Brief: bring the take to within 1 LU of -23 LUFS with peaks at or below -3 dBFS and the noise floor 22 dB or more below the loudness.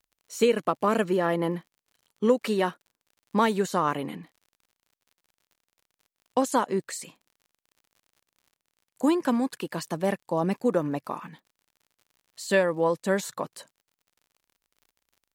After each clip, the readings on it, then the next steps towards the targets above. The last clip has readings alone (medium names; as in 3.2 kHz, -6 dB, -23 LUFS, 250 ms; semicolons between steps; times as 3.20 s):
tick rate 50 per s; loudness -26.5 LUFS; peak level -10.0 dBFS; loudness target -23.0 LUFS
-> de-click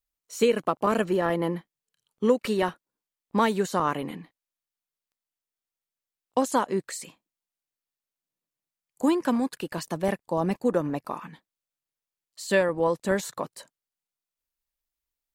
tick rate 0.13 per s; loudness -26.5 LUFS; peak level -10.0 dBFS; loudness target -23.0 LUFS
-> trim +3.5 dB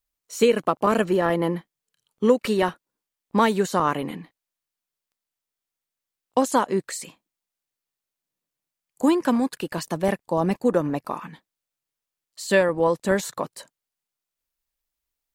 loudness -23.0 LUFS; peak level -6.5 dBFS; noise floor -87 dBFS